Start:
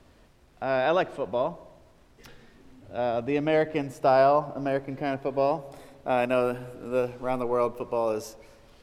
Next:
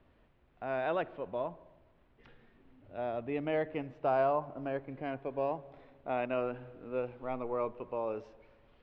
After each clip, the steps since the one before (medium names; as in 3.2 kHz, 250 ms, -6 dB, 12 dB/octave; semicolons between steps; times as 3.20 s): low-pass 3.2 kHz 24 dB/octave; trim -9 dB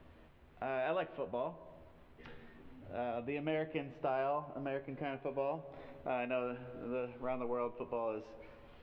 dynamic bell 2.7 kHz, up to +5 dB, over -58 dBFS, Q 2.2; compression 2:1, threshold -49 dBFS, peak gain reduction 13 dB; feedback comb 80 Hz, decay 0.18 s, harmonics all, mix 70%; trim +11 dB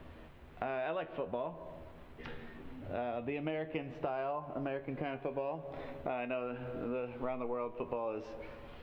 compression 5:1, threshold -41 dBFS, peak gain reduction 9.5 dB; trim +7 dB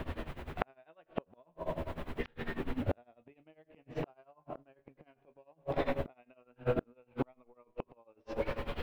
inverted gate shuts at -32 dBFS, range -36 dB; tremolo 10 Hz, depth 88%; trim +15.5 dB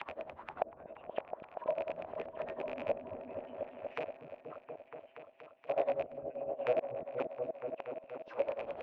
rattle on loud lows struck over -38 dBFS, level -17 dBFS; auto-wah 630–3700 Hz, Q 4.7, down, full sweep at -34 dBFS; delay with an opening low-pass 238 ms, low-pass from 200 Hz, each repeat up 1 oct, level 0 dB; trim +7 dB